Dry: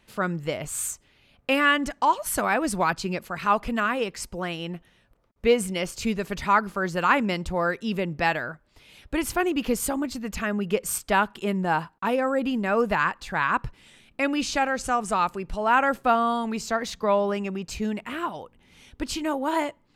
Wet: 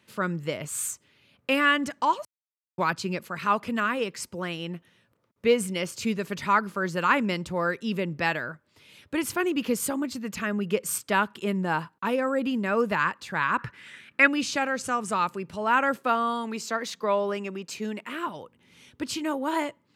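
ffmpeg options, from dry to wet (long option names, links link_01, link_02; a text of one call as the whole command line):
ffmpeg -i in.wav -filter_complex "[0:a]asettb=1/sr,asplit=3[link_01][link_02][link_03];[link_01]atrim=end=13.584[link_04];[link_02]atrim=start=13.58:end=14.28,asetpts=PTS-STARTPTS,afade=type=in:duration=0.004:curve=qsin,afade=type=out:start_time=0.696:duration=0.004:curve=qsin,equalizer=frequency=1700:width_type=o:width=1.2:gain=15[link_05];[link_03]atrim=start=14.276[link_06];[link_04][link_05]acrossfade=duration=0.004:curve1=hsin:curve2=qsin[link_07];[link_07][link_06]acrossfade=duration=0.004:curve1=qsin:curve2=hsin,asettb=1/sr,asplit=3[link_08][link_09][link_10];[link_08]atrim=end=15.974[link_11];[link_09]atrim=start=15.97:end=18.27,asetpts=PTS-STARTPTS,afade=type=in:duration=0.004:curve=qsin,afade=type=out:start_time=2.296:duration=0.004:curve=qsin,highpass=240[link_12];[link_10]atrim=start=18.266[link_13];[link_11][link_12]acrossfade=duration=0.004:curve1=hsin:curve2=qsin[link_14];[link_14][link_13]acrossfade=duration=0.004:curve1=qsin:curve2=hsin,asplit=3[link_15][link_16][link_17];[link_15]atrim=end=2.25,asetpts=PTS-STARTPTS,afade=type=out:start_time=2.246:duration=0.004:curve=hsin[link_18];[link_16]atrim=start=2.25:end=2.78,asetpts=PTS-STARTPTS,volume=0[link_19];[link_17]atrim=start=2.78,asetpts=PTS-STARTPTS,afade=type=in:duration=0.004:curve=hsin[link_20];[link_18][link_19][link_20]concat=n=3:v=0:a=1,highpass=frequency=95:width=0.5412,highpass=frequency=95:width=1.3066,equalizer=frequency=740:width_type=o:width=0.33:gain=-7.5,volume=-1dB" out.wav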